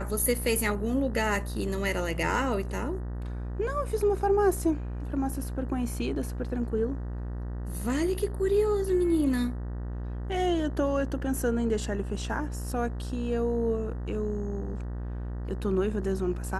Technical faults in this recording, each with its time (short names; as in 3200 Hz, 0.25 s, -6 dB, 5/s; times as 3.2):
buzz 60 Hz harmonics 32 -34 dBFS